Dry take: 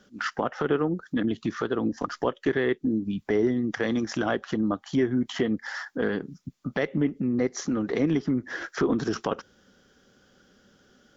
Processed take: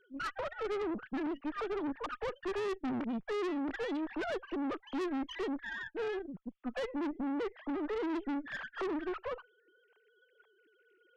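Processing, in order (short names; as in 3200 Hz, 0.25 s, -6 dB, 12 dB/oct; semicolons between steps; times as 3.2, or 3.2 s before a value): sine-wave speech; tube stage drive 33 dB, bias 0.55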